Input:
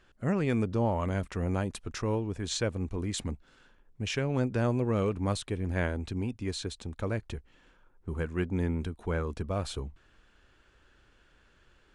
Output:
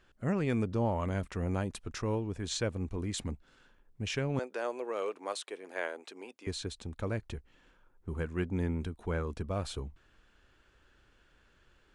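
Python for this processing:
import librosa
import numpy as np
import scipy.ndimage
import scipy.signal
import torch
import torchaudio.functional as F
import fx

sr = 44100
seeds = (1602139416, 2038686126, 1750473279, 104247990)

y = fx.highpass(x, sr, hz=410.0, slope=24, at=(4.39, 6.47))
y = y * librosa.db_to_amplitude(-2.5)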